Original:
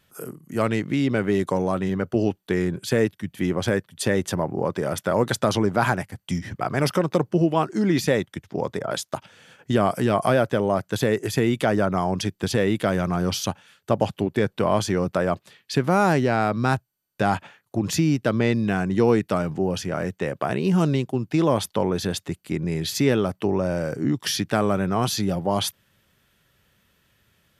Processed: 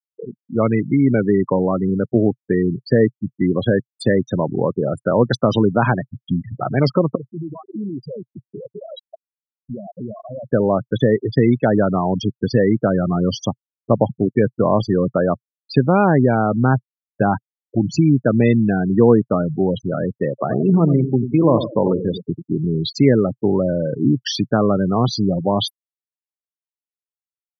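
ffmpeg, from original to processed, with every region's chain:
-filter_complex "[0:a]asettb=1/sr,asplit=3[a][b][c];[a]atrim=end=7.154[d];[b]atrim=start=7.15:end=10.5,asetpts=PTS-STARTPTS,afade=t=in:d=0.004:c=qsin,afade=t=out:st=3.346:d=0.004:c=qsin,acompressor=threshold=-26dB:ratio=16:attack=3.2:release=140:knee=1:detection=peak,aeval=exprs='0.0447*(abs(mod(val(0)/0.0447+3,4)-2)-1)':c=same[e];[c]atrim=start=10.496[f];[d][e]acrossfade=d=0.004:c1=hsin:c2=qsin[g];[g][f]acrossfade=d=0.004:c1=qsin:c2=hsin,asettb=1/sr,asplit=3[h][i][j];[h]atrim=end=20.294[k];[i]atrim=start=20.29:end=22.6,asetpts=PTS-STARTPTS,afade=t=in:d=0.004:c=qsin,afade=t=out:st=2.306:d=0.004:c=qsin,highpass=f=80:p=1,highshelf=f=5.1k:g=-6.5,aecho=1:1:91|182|273|364|455:0.355|0.156|0.0687|0.0302|0.0133,atrim=end_sample=101871[l];[j]atrim=start=22.596[m];[k][l]acrossfade=d=0.004:c1=hsin:c2=qsin[n];[n][m]acrossfade=d=0.004:c1=qsin:c2=hsin,afftfilt=real='re*gte(hypot(re,im),0.1)':imag='im*gte(hypot(re,im),0.1)':win_size=1024:overlap=0.75,equalizer=f=125:t=o:w=1:g=11,equalizer=f=250:t=o:w=1:g=9,equalizer=f=500:t=o:w=1:g=8,equalizer=f=1k:t=o:w=1:g=5,equalizer=f=2k:t=o:w=1:g=5,equalizer=f=4k:t=o:w=1:g=12,volume=-5dB"

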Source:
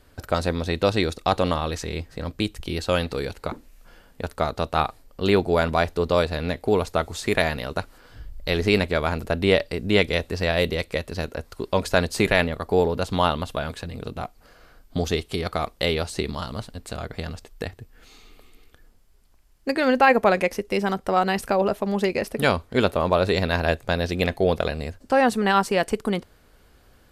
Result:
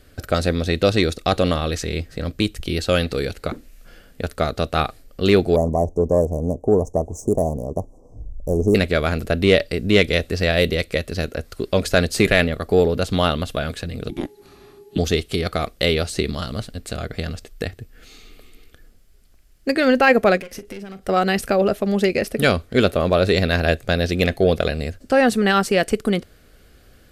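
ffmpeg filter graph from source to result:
-filter_complex "[0:a]asettb=1/sr,asplit=3[a][b][c];[a]atrim=end=5.564[d];[b]atrim=start=5.56:end=8.75,asetpts=PTS-STARTPTS,afade=t=in:d=0.004:c=qsin,afade=t=out:st=3.186:d=0.004:c=qsin,adynamicsmooth=sensitivity=5.5:basefreq=4.4k,asuperstop=centerf=2500:order=20:qfactor=0.52[e];[c]atrim=start=8.746[f];[d][e]acrossfade=d=0.004:c1=hsin:c2=qsin[g];[g][f]acrossfade=d=0.004:c1=qsin:c2=hsin,asettb=1/sr,asplit=3[h][i][j];[h]atrim=end=14.094[k];[i]atrim=start=14.09:end=14.98,asetpts=PTS-STARTPTS,afade=t=in:d=0.004:c=qsin,afade=t=out:st=0.886:d=0.004:c=qsin,afreqshift=-430,aeval=exprs='val(0)+0.00126*sin(2*PI*840*n/s)':c=same[l];[j]atrim=start=14.976[m];[k][l]acrossfade=d=0.004:c1=hsin:c2=qsin[n];[n][m]acrossfade=d=0.004:c1=qsin:c2=hsin,asettb=1/sr,asplit=3[o][p][q];[o]atrim=end=20.374[r];[p]atrim=start=20.37:end=21.09,asetpts=PTS-STARTPTS,afade=t=in:d=0.004:c=qsin,afade=t=out:st=0.716:d=0.004:c=qsin,aeval=exprs='clip(val(0),-1,0.0531)':c=same,acompressor=threshold=-34dB:ratio=12:attack=3.2:release=140:knee=1:detection=peak,asplit=2[s][t];[t]adelay=41,volume=-14dB[u];[s][u]amix=inputs=2:normalize=0,atrim=end_sample=31752[v];[q]atrim=start=21.086[w];[r][v]acrossfade=d=0.004:c1=hsin:c2=qsin[x];[x][w]acrossfade=d=0.004:c1=qsin:c2=hsin,equalizer=f=940:w=3.3:g=-13,acontrast=28"

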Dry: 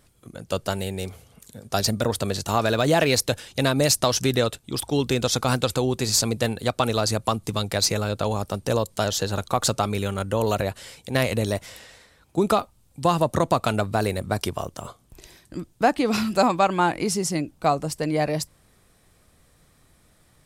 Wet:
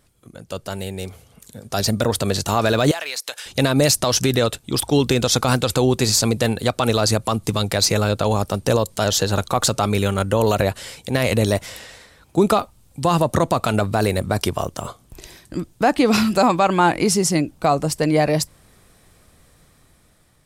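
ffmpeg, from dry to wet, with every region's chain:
-filter_complex "[0:a]asettb=1/sr,asplit=3[a][b][c];[a]atrim=end=2.914[d];[b]atrim=start=2.91:end=3.46,asetpts=PTS-STARTPTS,afade=t=in:d=0.004:c=qsin,afade=t=out:st=0.546:d=0.004:c=qsin,highpass=970,acompressor=threshold=-30dB:ratio=8:attack=3.2:release=140:knee=1:detection=peak[e];[c]atrim=start=3.456[f];[d][e]acrossfade=d=0.004:c1=hsin:c2=qsin[g];[g][f]acrossfade=d=0.004:c1=qsin:c2=hsin,alimiter=limit=-13dB:level=0:latency=1:release=49,dynaudnorm=f=630:g=5:m=8dB,volume=-1dB"

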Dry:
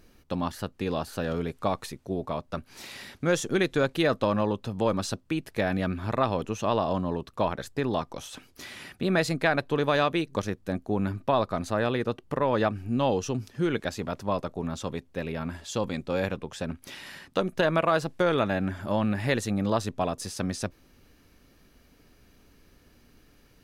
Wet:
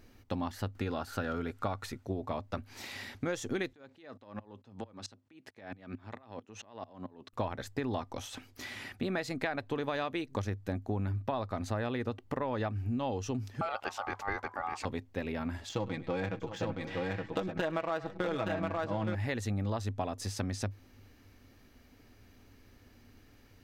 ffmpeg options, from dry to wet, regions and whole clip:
-filter_complex "[0:a]asettb=1/sr,asplit=3[a][b][c];[a]atrim=end=0.754[d];[b]atrim=start=0.75:end=2.03,asetpts=PTS-STARTPTS,afade=t=in:d=0.004:c=qsin,afade=t=out:st=1.276:d=0.004:c=qsin,equalizer=f=1.4k:t=o:w=0.24:g=12.5,acompressor=mode=upward:threshold=-46dB:ratio=2.5:attack=3.2:release=140:knee=2.83:detection=peak[e];[c]atrim=start=2.026[f];[d][e]acrossfade=d=0.004:c1=hsin:c2=qsin[g];[g][f]acrossfade=d=0.004:c1=qsin:c2=hsin,asettb=1/sr,asplit=3[h][i][j];[h]atrim=end=3.734[k];[i]atrim=start=3.73:end=7.33,asetpts=PTS-STARTPTS,afade=t=in:d=0.004:c=qsin,afade=t=out:st=3.596:d=0.004:c=qsin,highpass=160,lowpass=7.7k,acompressor=threshold=-30dB:ratio=12:attack=3.2:release=140:knee=1:detection=peak,aeval=exprs='val(0)*pow(10,-28*if(lt(mod(-4.5*n/s,1),2*abs(-4.5)/1000),1-mod(-4.5*n/s,1)/(2*abs(-4.5)/1000),(mod(-4.5*n/s,1)-2*abs(-4.5)/1000)/(1-2*abs(-4.5)/1000))/20)':c=same[l];[j]atrim=start=7.326[m];[k][l]acrossfade=d=0.004:c1=hsin:c2=qsin[n];[n][m]acrossfade=d=0.004:c1=qsin:c2=hsin,asettb=1/sr,asplit=3[o][p][q];[o]atrim=end=13.614[r];[p]atrim=start=13.61:end=14.85,asetpts=PTS-STARTPTS,afade=t=in:d=0.004:c=qsin,afade=t=out:st=1.236:d=0.004:c=qsin,highshelf=f=6.7k:g=-5,acompressor=mode=upward:threshold=-30dB:ratio=2.5:attack=3.2:release=140:knee=2.83:detection=peak,aeval=exprs='val(0)*sin(2*PI*1000*n/s)':c=same[s];[q]atrim=start=14.846[t];[r][s]acrossfade=d=0.004:c1=hsin:c2=qsin[u];[u][t]acrossfade=d=0.004:c1=qsin:c2=hsin,asettb=1/sr,asplit=3[v][w][x];[v]atrim=end=15.694[y];[w]atrim=start=15.69:end=19.15,asetpts=PTS-STARTPTS,afade=t=in:d=0.004:c=qsin,afade=t=out:st=3.456:d=0.004:c=qsin,aecho=1:1:6.2:0.74,atrim=end_sample=152586,adynamicsmooth=sensitivity=3.5:basefreq=2.6k,aecho=1:1:102|708|869:0.112|0.126|0.631,atrim=end_sample=152586[z];[x]atrim=start=19.146[aa];[y][z]acrossfade=d=0.004:c1=hsin:c2=qsin[ab];[ab][aa]acrossfade=d=0.004:c1=qsin:c2=hsin,equalizer=f=100:t=o:w=0.33:g=12,equalizer=f=160:t=o:w=0.33:g=-7,equalizer=f=250:t=o:w=0.33:g=5,equalizer=f=800:t=o:w=0.33:g=4,equalizer=f=2k:t=o:w=0.33:g=4,equalizer=f=10k:t=o:w=0.33:g=-6,acompressor=threshold=-28dB:ratio=6,volume=-2.5dB"

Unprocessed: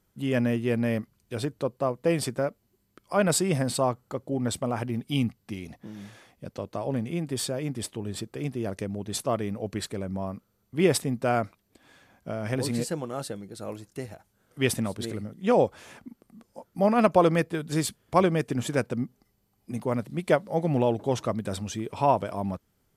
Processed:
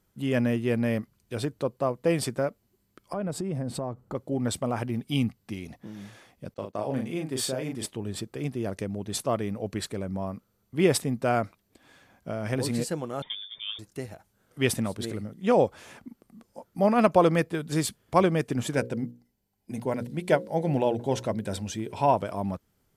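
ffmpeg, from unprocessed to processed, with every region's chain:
-filter_complex "[0:a]asettb=1/sr,asplit=3[a][b][c];[a]atrim=end=3.134[d];[b]atrim=start=3.13:end=4.15,asetpts=PTS-STARTPTS,afade=t=in:d=0.004:c=qsin,afade=t=out:st=1.016:d=0.004:c=qsin,tiltshelf=f=1.1k:g=7.5,acompressor=threshold=-30dB:ratio=4:attack=3.2:release=140:knee=1:detection=peak[e];[c]atrim=start=4.146[f];[d][e]acrossfade=d=0.004:c1=hsin:c2=qsin[g];[g][f]acrossfade=d=0.004:c1=qsin:c2=hsin,asettb=1/sr,asplit=3[h][i][j];[h]atrim=end=6.544[k];[i]atrim=start=6.54:end=7.86,asetpts=PTS-STARTPTS,afade=t=in:d=0.004:c=qsin,afade=t=out:st=1.316:d=0.004:c=qsin,agate=range=-33dB:threshold=-38dB:ratio=3:release=100:detection=peak,lowshelf=f=110:g=-11.5,asplit=2[l][m];[m]adelay=38,volume=-4.5dB[n];[l][n]amix=inputs=2:normalize=0,atrim=end_sample=58212[o];[j]atrim=start=7.856[p];[k][o]acrossfade=d=0.004:c1=hsin:c2=qsin[q];[q][p]acrossfade=d=0.004:c1=qsin:c2=hsin,asettb=1/sr,asplit=3[r][s][t];[r]atrim=end=13.224[u];[s]atrim=start=13.22:end=13.79,asetpts=PTS-STARTPTS,afade=t=in:d=0.004:c=qsin,afade=t=out:st=0.566:d=0.004:c=qsin,lowpass=f=3.1k:t=q:w=0.5098,lowpass=f=3.1k:t=q:w=0.6013,lowpass=f=3.1k:t=q:w=0.9,lowpass=f=3.1k:t=q:w=2.563,afreqshift=-3700,bandreject=f=60:t=h:w=6,bandreject=f=120:t=h:w=6,bandreject=f=180:t=h:w=6,bandreject=f=240:t=h:w=6,bandreject=f=300:t=h:w=6[v];[t]atrim=start=13.786[w];[u][v]acrossfade=d=0.004:c1=hsin:c2=qsin[x];[x][w]acrossfade=d=0.004:c1=qsin:c2=hsin,asettb=1/sr,asplit=3[y][z][aa];[y]atrim=end=18.744[ab];[z]atrim=start=18.74:end=22.14,asetpts=PTS-STARTPTS,afade=t=in:d=0.004:c=qsin,afade=t=out:st=3.396:d=0.004:c=qsin,agate=range=-6dB:threshold=-49dB:ratio=16:release=100:detection=peak,asuperstop=centerf=1200:order=4:qfactor=5.6,bandreject=f=60:t=h:w=6,bandreject=f=120:t=h:w=6,bandreject=f=180:t=h:w=6,bandreject=f=240:t=h:w=6,bandreject=f=300:t=h:w=6,bandreject=f=360:t=h:w=6,bandreject=f=420:t=h:w=6,bandreject=f=480:t=h:w=6,bandreject=f=540:t=h:w=6[ac];[aa]atrim=start=22.136[ad];[ab][ac]acrossfade=d=0.004:c1=hsin:c2=qsin[ae];[ae][ad]acrossfade=d=0.004:c1=qsin:c2=hsin"

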